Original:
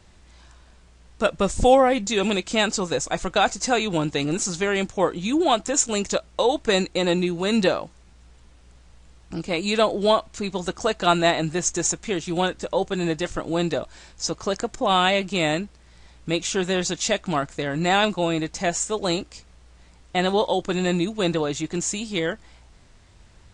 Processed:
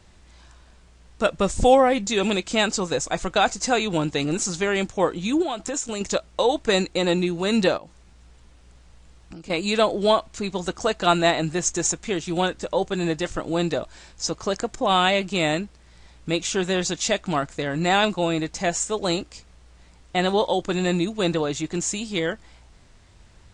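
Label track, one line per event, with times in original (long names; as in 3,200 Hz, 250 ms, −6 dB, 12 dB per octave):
5.420000	6.010000	downward compressor 5 to 1, threshold −24 dBFS
7.770000	9.500000	downward compressor, threshold −36 dBFS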